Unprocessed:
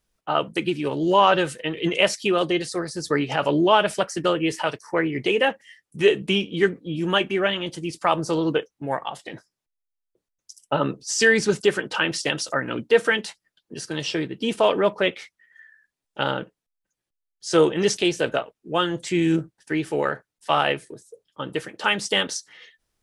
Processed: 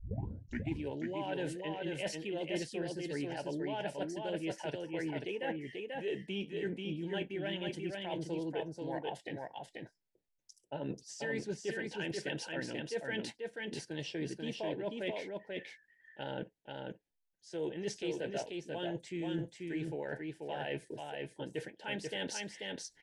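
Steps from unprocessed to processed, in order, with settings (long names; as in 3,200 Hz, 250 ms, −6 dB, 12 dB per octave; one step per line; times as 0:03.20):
turntable start at the beginning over 0.77 s
high-shelf EQ 3,800 Hz −9 dB
reversed playback
downward compressor 6 to 1, threshold −31 dBFS, peak gain reduction 18 dB
reversed playback
Butterworth band-reject 1,200 Hz, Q 2
on a send: single-tap delay 487 ms −3.5 dB
on the sum: every ending faded ahead of time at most 510 dB per second
level −5 dB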